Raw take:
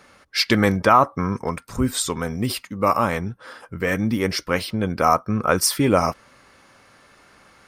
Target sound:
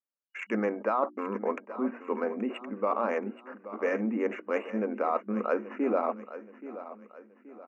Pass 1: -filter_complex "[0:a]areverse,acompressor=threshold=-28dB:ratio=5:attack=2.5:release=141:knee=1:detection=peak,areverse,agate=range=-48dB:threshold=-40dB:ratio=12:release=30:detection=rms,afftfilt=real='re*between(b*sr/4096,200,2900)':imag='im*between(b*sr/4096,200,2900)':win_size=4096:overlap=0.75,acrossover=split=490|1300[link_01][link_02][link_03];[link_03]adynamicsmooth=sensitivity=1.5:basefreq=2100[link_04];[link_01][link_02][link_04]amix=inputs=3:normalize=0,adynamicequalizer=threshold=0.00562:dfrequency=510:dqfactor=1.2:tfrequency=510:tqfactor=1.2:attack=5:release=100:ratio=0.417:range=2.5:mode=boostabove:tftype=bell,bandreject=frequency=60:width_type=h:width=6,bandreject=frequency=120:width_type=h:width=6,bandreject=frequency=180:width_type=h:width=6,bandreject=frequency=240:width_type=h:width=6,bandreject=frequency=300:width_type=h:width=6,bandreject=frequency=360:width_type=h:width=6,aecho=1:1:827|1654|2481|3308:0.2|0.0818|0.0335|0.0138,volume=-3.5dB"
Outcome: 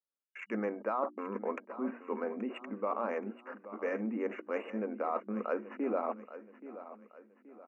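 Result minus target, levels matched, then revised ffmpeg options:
downward compressor: peak gain reduction +5.5 dB
-filter_complex "[0:a]areverse,acompressor=threshold=-21dB:ratio=5:attack=2.5:release=141:knee=1:detection=peak,areverse,agate=range=-48dB:threshold=-40dB:ratio=12:release=30:detection=rms,afftfilt=real='re*between(b*sr/4096,200,2900)':imag='im*between(b*sr/4096,200,2900)':win_size=4096:overlap=0.75,acrossover=split=490|1300[link_01][link_02][link_03];[link_03]adynamicsmooth=sensitivity=1.5:basefreq=2100[link_04];[link_01][link_02][link_04]amix=inputs=3:normalize=0,adynamicequalizer=threshold=0.00562:dfrequency=510:dqfactor=1.2:tfrequency=510:tqfactor=1.2:attack=5:release=100:ratio=0.417:range=2.5:mode=boostabove:tftype=bell,bandreject=frequency=60:width_type=h:width=6,bandreject=frequency=120:width_type=h:width=6,bandreject=frequency=180:width_type=h:width=6,bandreject=frequency=240:width_type=h:width=6,bandreject=frequency=300:width_type=h:width=6,bandreject=frequency=360:width_type=h:width=6,aecho=1:1:827|1654|2481|3308:0.2|0.0818|0.0335|0.0138,volume=-3.5dB"

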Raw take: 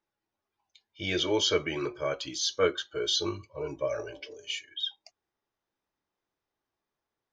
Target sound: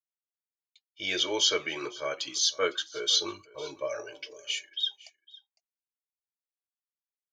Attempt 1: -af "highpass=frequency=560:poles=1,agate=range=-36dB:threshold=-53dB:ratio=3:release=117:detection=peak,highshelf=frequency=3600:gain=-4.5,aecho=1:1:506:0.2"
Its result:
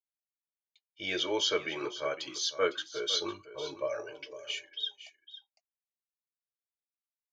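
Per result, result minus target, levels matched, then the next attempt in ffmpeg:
echo-to-direct +7.5 dB; 8,000 Hz band −4.0 dB
-af "highpass=frequency=560:poles=1,agate=range=-36dB:threshold=-53dB:ratio=3:release=117:detection=peak,highshelf=frequency=3600:gain=-4.5,aecho=1:1:506:0.0841"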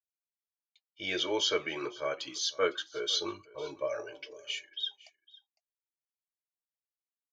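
8,000 Hz band −4.0 dB
-af "highpass=frequency=560:poles=1,agate=range=-36dB:threshold=-53dB:ratio=3:release=117:detection=peak,highshelf=frequency=3600:gain=6.5,aecho=1:1:506:0.0841"

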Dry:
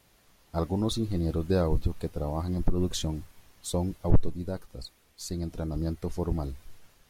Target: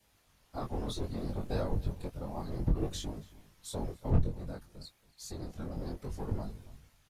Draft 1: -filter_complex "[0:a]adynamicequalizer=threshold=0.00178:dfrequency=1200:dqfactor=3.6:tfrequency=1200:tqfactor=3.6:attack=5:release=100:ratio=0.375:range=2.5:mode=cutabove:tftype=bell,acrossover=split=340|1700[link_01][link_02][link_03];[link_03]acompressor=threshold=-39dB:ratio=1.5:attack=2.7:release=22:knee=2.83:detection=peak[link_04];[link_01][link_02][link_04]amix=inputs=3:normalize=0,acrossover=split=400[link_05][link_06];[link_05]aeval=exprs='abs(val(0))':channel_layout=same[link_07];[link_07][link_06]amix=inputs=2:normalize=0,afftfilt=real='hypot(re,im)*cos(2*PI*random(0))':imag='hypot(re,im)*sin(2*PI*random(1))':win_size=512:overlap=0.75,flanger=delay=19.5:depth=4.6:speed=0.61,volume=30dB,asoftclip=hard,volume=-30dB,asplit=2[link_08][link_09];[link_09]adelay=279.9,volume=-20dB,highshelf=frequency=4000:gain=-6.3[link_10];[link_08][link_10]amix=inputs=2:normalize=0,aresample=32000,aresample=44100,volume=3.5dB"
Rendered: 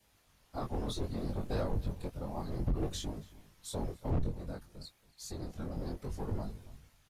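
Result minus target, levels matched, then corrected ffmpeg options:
gain into a clipping stage and back: distortion +21 dB
-filter_complex "[0:a]adynamicequalizer=threshold=0.00178:dfrequency=1200:dqfactor=3.6:tfrequency=1200:tqfactor=3.6:attack=5:release=100:ratio=0.375:range=2.5:mode=cutabove:tftype=bell,acrossover=split=340|1700[link_01][link_02][link_03];[link_03]acompressor=threshold=-39dB:ratio=1.5:attack=2.7:release=22:knee=2.83:detection=peak[link_04];[link_01][link_02][link_04]amix=inputs=3:normalize=0,acrossover=split=400[link_05][link_06];[link_05]aeval=exprs='abs(val(0))':channel_layout=same[link_07];[link_07][link_06]amix=inputs=2:normalize=0,afftfilt=real='hypot(re,im)*cos(2*PI*random(0))':imag='hypot(re,im)*sin(2*PI*random(1))':win_size=512:overlap=0.75,flanger=delay=19.5:depth=4.6:speed=0.61,volume=19.5dB,asoftclip=hard,volume=-19.5dB,asplit=2[link_08][link_09];[link_09]adelay=279.9,volume=-20dB,highshelf=frequency=4000:gain=-6.3[link_10];[link_08][link_10]amix=inputs=2:normalize=0,aresample=32000,aresample=44100,volume=3.5dB"

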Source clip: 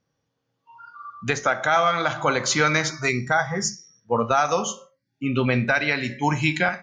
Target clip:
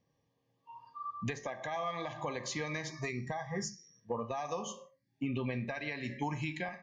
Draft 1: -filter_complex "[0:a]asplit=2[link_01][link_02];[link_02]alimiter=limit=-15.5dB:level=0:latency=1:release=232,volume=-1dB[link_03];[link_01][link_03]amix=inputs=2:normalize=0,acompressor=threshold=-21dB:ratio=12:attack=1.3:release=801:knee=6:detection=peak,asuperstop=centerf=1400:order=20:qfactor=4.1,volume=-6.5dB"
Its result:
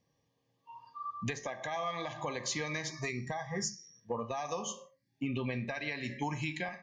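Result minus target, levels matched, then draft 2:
8,000 Hz band +4.0 dB
-filter_complex "[0:a]asplit=2[link_01][link_02];[link_02]alimiter=limit=-15.5dB:level=0:latency=1:release=232,volume=-1dB[link_03];[link_01][link_03]amix=inputs=2:normalize=0,acompressor=threshold=-21dB:ratio=12:attack=1.3:release=801:knee=6:detection=peak,asuperstop=centerf=1400:order=20:qfactor=4.1,highshelf=frequency=3100:gain=-6,volume=-6.5dB"

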